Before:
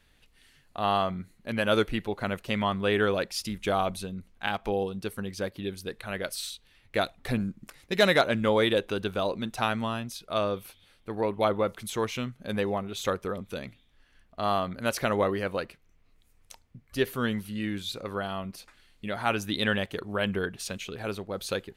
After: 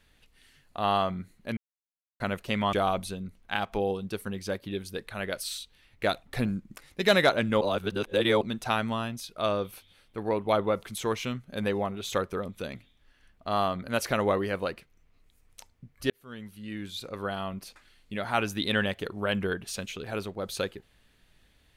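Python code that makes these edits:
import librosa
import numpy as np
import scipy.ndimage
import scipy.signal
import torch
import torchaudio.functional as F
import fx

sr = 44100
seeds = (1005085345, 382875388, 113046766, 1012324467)

y = fx.edit(x, sr, fx.silence(start_s=1.57, length_s=0.63),
    fx.cut(start_s=2.73, length_s=0.92),
    fx.reverse_span(start_s=8.53, length_s=0.8),
    fx.fade_in_span(start_s=17.02, length_s=1.25), tone=tone)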